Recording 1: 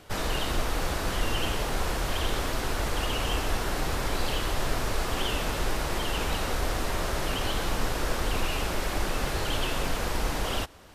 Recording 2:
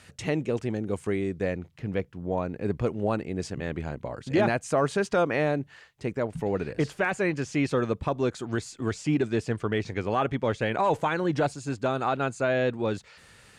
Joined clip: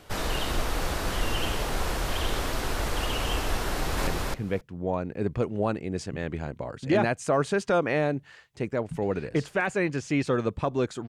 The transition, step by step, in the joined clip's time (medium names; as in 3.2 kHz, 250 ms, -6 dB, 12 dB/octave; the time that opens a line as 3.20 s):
recording 1
3.70–4.07 s: echo throw 270 ms, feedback 10%, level -1 dB
4.07 s: go over to recording 2 from 1.51 s